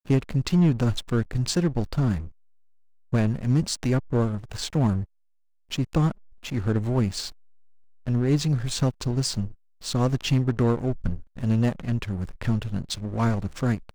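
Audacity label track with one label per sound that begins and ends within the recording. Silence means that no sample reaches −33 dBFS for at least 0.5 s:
3.130000	5.040000	sound
5.720000	7.300000	sound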